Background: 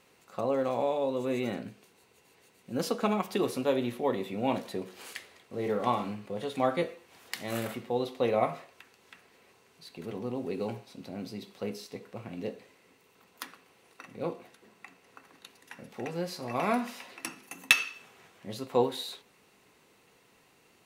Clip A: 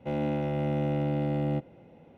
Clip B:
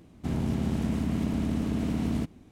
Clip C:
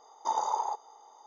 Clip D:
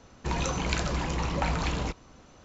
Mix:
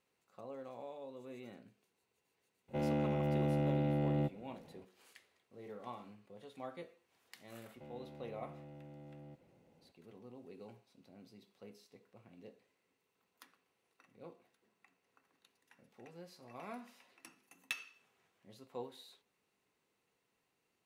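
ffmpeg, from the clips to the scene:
ffmpeg -i bed.wav -i cue0.wav -filter_complex "[1:a]asplit=2[link_01][link_02];[0:a]volume=-19dB[link_03];[link_02]alimiter=level_in=8dB:limit=-24dB:level=0:latency=1:release=71,volume=-8dB[link_04];[link_01]atrim=end=2.17,asetpts=PTS-STARTPTS,volume=-5dB,afade=type=in:duration=0.004:curve=hsin,afade=type=out:start_time=2.166:duration=0.004:curve=hsin,adelay=2680[link_05];[link_04]atrim=end=2.17,asetpts=PTS-STARTPTS,volume=-14.5dB,afade=type=in:duration=0.004:curve=hsin,afade=type=out:start_time=2.166:duration=0.004:curve=hsin,adelay=7750[link_06];[link_03][link_05][link_06]amix=inputs=3:normalize=0" out.wav

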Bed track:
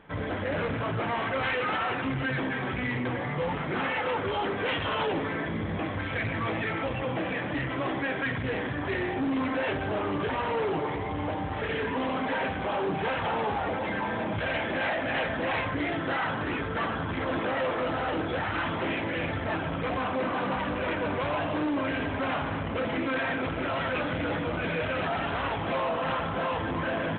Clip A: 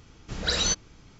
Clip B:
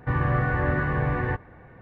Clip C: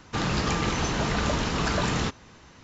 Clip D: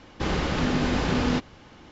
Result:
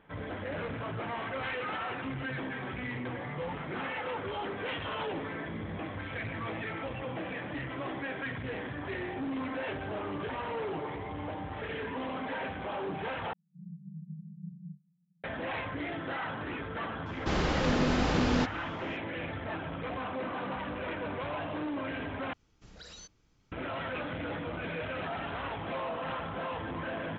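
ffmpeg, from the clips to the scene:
ffmpeg -i bed.wav -i cue0.wav -i cue1.wav -i cue2.wav -i cue3.wav -filter_complex "[4:a]asplit=2[link_01][link_02];[0:a]volume=-7dB[link_03];[link_01]asuperpass=centerf=170:order=12:qfactor=3.2[link_04];[1:a]acompressor=threshold=-37dB:ratio=4:attack=43:release=35:knee=6:detection=peak[link_05];[link_03]asplit=3[link_06][link_07][link_08];[link_06]atrim=end=13.334[link_09];[link_04]atrim=end=1.91,asetpts=PTS-STARTPTS,volume=-11dB[link_10];[link_07]atrim=start=15.236:end=22.334[link_11];[link_05]atrim=end=1.19,asetpts=PTS-STARTPTS,volume=-17dB[link_12];[link_08]atrim=start=23.516[link_13];[link_02]atrim=end=1.91,asetpts=PTS-STARTPTS,volume=-3.5dB,afade=type=in:duration=0.004:curve=hsin,afade=type=out:start_time=1.906:duration=0.004:curve=hsin,adelay=17060[link_14];[link_09][link_10]acrossfade=duration=0.004:curve1=hsin:curve2=hsin[link_15];[link_15][link_11]acrossfade=duration=0.004:curve1=hsin:curve2=hsin[link_16];[link_16][link_12]acrossfade=duration=0.004:curve1=hsin:curve2=hsin[link_17];[link_17][link_13]acrossfade=duration=0.004:curve1=hsin:curve2=hsin[link_18];[link_18][link_14]amix=inputs=2:normalize=0" out.wav

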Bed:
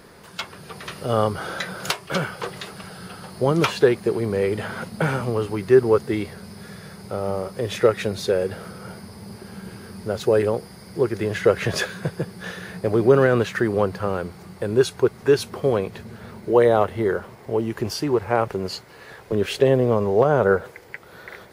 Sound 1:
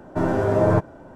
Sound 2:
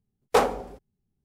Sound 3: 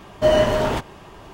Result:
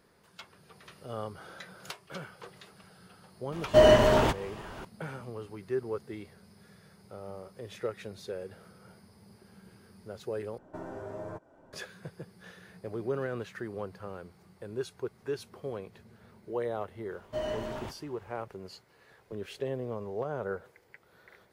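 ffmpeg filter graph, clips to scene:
ffmpeg -i bed.wav -i cue0.wav -i cue1.wav -i cue2.wav -filter_complex "[3:a]asplit=2[link_01][link_02];[0:a]volume=-17.5dB[link_03];[1:a]acrossover=split=310|1700|5200[link_04][link_05][link_06][link_07];[link_04]acompressor=threshold=-37dB:ratio=3[link_08];[link_05]acompressor=threshold=-28dB:ratio=3[link_09];[link_06]acompressor=threshold=-51dB:ratio=3[link_10];[link_07]acompressor=threshold=-59dB:ratio=3[link_11];[link_08][link_09][link_10][link_11]amix=inputs=4:normalize=0[link_12];[link_03]asplit=2[link_13][link_14];[link_13]atrim=end=10.584[link_15];[link_12]atrim=end=1.15,asetpts=PTS-STARTPTS,volume=-13.5dB[link_16];[link_14]atrim=start=11.726[link_17];[link_01]atrim=end=1.33,asetpts=PTS-STARTPTS,volume=-2dB,afade=type=in:duration=0.004:curve=hsin,afade=type=out:start_time=1.326:duration=0.004:curve=hsin,adelay=3520[link_18];[link_02]atrim=end=1.33,asetpts=PTS-STARTPTS,volume=-18dB,afade=type=in:duration=0.004:curve=hsin,afade=type=out:start_time=1.326:duration=0.004:curve=hsin,adelay=17110[link_19];[link_15][link_16]acrossfade=duration=0.004:curve1=hsin:curve2=hsin[link_20];[link_20][link_17]acrossfade=duration=0.004:curve1=hsin:curve2=hsin[link_21];[link_21][link_18][link_19]amix=inputs=3:normalize=0" out.wav

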